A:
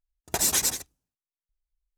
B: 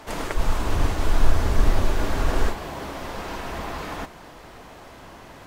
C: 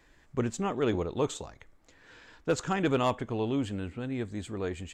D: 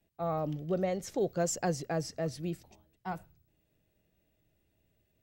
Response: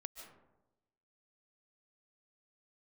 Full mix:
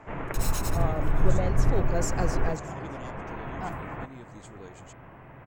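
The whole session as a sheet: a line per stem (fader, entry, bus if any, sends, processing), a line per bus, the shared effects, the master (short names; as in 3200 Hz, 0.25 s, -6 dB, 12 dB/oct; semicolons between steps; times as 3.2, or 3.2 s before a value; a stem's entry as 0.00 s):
-13.0 dB, 0.00 s, send -9.5 dB, echo send -23.5 dB, minimum comb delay 0.75 ms
-5.5 dB, 0.00 s, no send, no echo send, steep low-pass 2500 Hz 36 dB/oct; bell 130 Hz +14 dB 0.44 oct
-11.5 dB, 0.00 s, no send, no echo send, bell 6500 Hz +11 dB 0.8 oct; compressor, threshold -30 dBFS, peak gain reduction 9 dB
-1.5 dB, 0.55 s, muted 2.57–3.26, send -9.5 dB, echo send -21.5 dB, dry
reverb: on, RT60 1.0 s, pre-delay 0.105 s
echo: echo 0.617 s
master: dry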